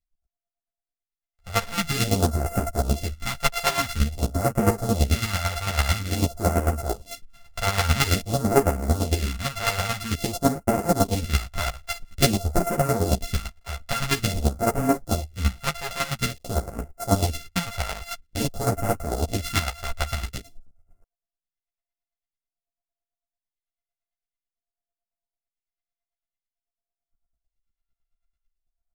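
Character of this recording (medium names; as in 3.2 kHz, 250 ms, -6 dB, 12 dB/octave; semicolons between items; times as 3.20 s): a buzz of ramps at a fixed pitch in blocks of 64 samples; phasing stages 2, 0.49 Hz, lowest notch 270–3500 Hz; chopped level 9 Hz, depth 65%, duty 25%; a shimmering, thickened sound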